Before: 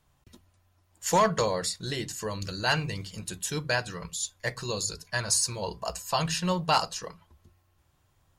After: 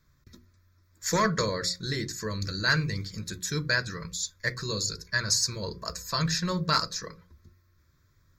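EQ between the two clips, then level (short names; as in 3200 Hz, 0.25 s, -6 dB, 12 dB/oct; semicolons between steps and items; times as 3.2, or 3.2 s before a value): notches 60/120/180/240/300/360/420/480/540 Hz; fixed phaser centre 2900 Hz, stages 6; +4.0 dB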